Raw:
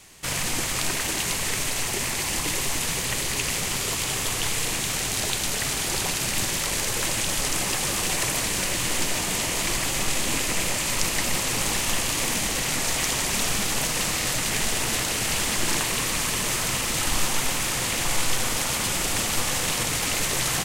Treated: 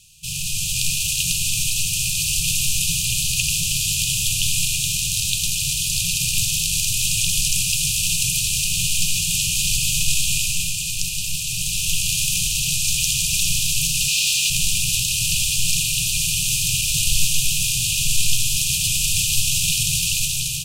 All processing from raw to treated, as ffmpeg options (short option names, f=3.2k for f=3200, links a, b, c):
-filter_complex "[0:a]asettb=1/sr,asplit=3[a][b][c];[a]atrim=end=14.084[d];[b]atrim=start=14.08:end=14.5,asetpts=PTS-STARTPTS,afade=t=in:d=0.004:c=qsin,afade=t=out:st=0.416:d=0.004:c=qsin,highpass=230,asplit=2[e][f];[f]highpass=f=720:p=1,volume=14dB,asoftclip=type=tanh:threshold=-13.5dB[g];[e][g]amix=inputs=2:normalize=0,lowpass=f=4.7k:p=1,volume=-6dB[h];[c]atrim=start=14.496[i];[d][h]acrossfade=d=0.004:c1=hsin:c2=qsin[j];[j][i]acrossfade=d=0.004:c1=qsin:c2=hsin,afftfilt=real='re*(1-between(b*sr/4096,180,2400))':imag='im*(1-between(b*sr/4096,180,2400))':win_size=4096:overlap=0.75,dynaudnorm=f=250:g=5:m=7dB"